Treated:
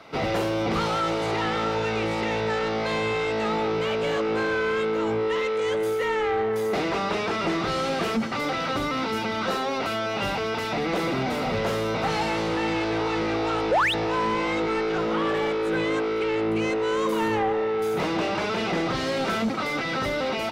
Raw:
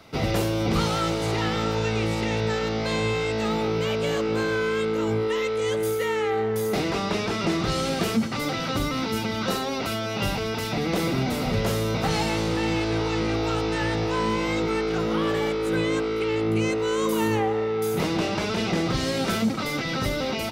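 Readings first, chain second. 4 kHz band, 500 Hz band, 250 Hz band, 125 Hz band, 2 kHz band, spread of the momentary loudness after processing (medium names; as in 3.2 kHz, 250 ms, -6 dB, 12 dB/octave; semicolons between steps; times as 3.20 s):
-1.5 dB, +0.5 dB, -2.0 dB, -6.5 dB, +2.0 dB, 2 LU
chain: pre-echo 31 ms -22.5 dB; painted sound rise, 13.71–13.94 s, 440–4100 Hz -17 dBFS; overdrive pedal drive 17 dB, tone 1.6 kHz, clips at -11 dBFS; trim -3.5 dB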